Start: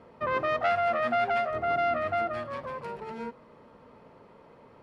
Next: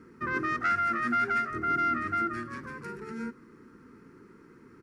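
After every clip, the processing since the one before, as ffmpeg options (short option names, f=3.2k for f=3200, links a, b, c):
-af "firequalizer=gain_entry='entry(100,0);entry(350,9);entry(600,-24);entry(1400,6);entry(3200,-10);entry(5700,7)':delay=0.05:min_phase=1"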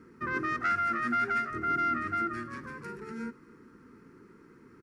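-af "aecho=1:1:264:0.075,volume=-1.5dB"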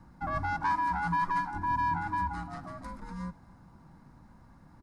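-af "afreqshift=-410"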